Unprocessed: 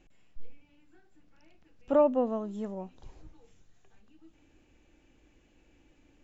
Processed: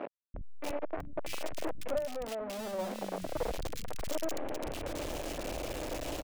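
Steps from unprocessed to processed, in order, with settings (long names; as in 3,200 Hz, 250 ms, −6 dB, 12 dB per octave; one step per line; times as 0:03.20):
sign of each sample alone
speech leveller within 4 dB 0.5 s
parametric band 590 Hz +11 dB 0.85 octaves
three-band delay without the direct sound mids, lows, highs 340/640 ms, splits 220/2,000 Hz
0:01.98–0:02.79: downward compressor, threshold −31 dBFS, peak gain reduction 6.5 dB
level −2 dB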